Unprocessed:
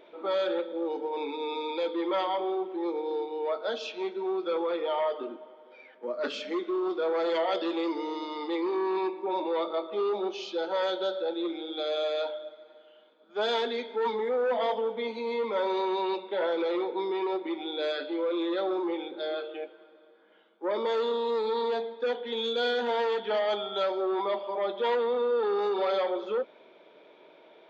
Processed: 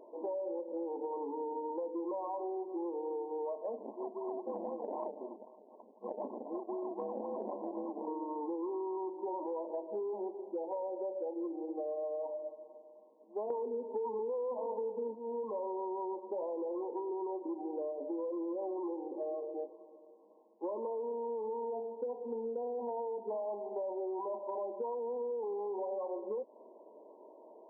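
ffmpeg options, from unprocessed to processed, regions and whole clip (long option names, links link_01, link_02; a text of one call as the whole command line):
ffmpeg -i in.wav -filter_complex "[0:a]asettb=1/sr,asplit=3[link_01][link_02][link_03];[link_01]atrim=end=3.784[link_04];[link_02]atrim=start=3.78:end=8.08,asetpts=PTS-STARTPTS,afade=type=in:duration=0.004:curve=qsin,afade=type=out:start_time=4.296:duration=0.004:curve=qsin,highpass=frequency=310:poles=1,acrusher=samples=33:mix=1:aa=0.000001:lfo=1:lforange=19.8:lforate=3.9,tremolo=f=280:d=0.75[link_05];[link_03]atrim=start=8.076[link_06];[link_04][link_05]acrossfade=duration=0.004:curve1=hsin:curve2=qsin[link_07];[link_07][link_06]acrossfade=duration=0.004:curve1=qsin:curve2=hsin,asettb=1/sr,asplit=3[link_08][link_09][link_10];[link_08]atrim=end=13.504[link_11];[link_09]atrim=start=13.5:end=15.15,asetpts=PTS-STARTPTS,afade=type=in:duration=0.004:curve=qsin,afade=type=out:start_time=1.646:duration=0.004:curve=qsin,equalizer=frequency=500:width=0.31:gain=13.5,bandreject=frequency=700:width=5.2,aeval=exprs='clip(val(0),-1,0.178)':channel_layout=same[link_12];[link_10]atrim=start=15.146[link_13];[link_11][link_12]acrossfade=duration=0.004:curve1=hsin:curve2=qsin[link_14];[link_14][link_13]acrossfade=duration=0.004:curve1=qsin:curve2=hsin,afftfilt=real='re*between(b*sr/4096,200,1100)':imag='im*between(b*sr/4096,200,1100)':win_size=4096:overlap=0.75,acompressor=threshold=-35dB:ratio=10" out.wav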